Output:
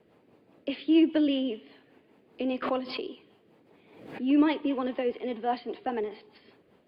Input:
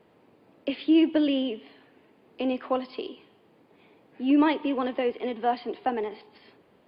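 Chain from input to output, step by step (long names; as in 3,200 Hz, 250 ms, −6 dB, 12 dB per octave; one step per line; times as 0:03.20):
rotating-speaker cabinet horn 5 Hz
0:02.62–0:04.21: background raised ahead of every attack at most 64 dB per second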